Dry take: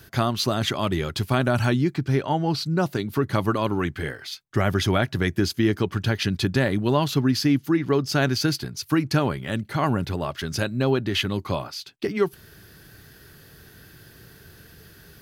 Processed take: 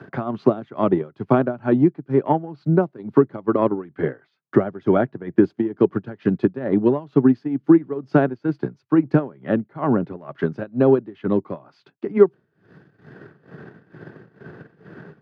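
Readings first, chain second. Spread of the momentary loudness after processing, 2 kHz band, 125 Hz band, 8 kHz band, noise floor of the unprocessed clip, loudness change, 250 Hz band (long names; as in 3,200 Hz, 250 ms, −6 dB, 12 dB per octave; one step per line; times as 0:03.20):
9 LU, −6.0 dB, −2.5 dB, below −35 dB, −50 dBFS, +3.0 dB, +5.0 dB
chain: low-pass filter 1,200 Hz 12 dB per octave
amplitude tremolo 2.2 Hz, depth 77%
dynamic equaliser 380 Hz, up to +6 dB, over −35 dBFS, Q 0.81
transient designer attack +6 dB, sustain −8 dB
high-pass filter 140 Hz 24 dB per octave
multiband upward and downward compressor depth 40%
level +1.5 dB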